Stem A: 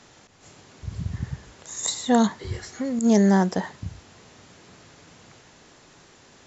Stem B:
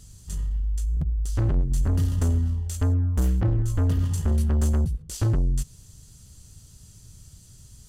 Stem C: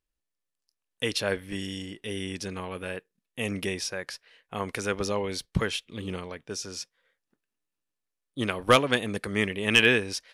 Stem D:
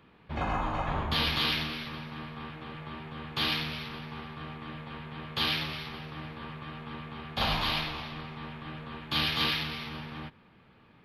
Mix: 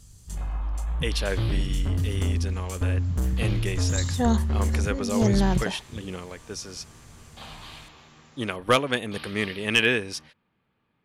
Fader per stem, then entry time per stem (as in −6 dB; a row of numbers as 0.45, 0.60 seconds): −5.5, −3.0, −1.0, −14.0 decibels; 2.10, 0.00, 0.00, 0.00 seconds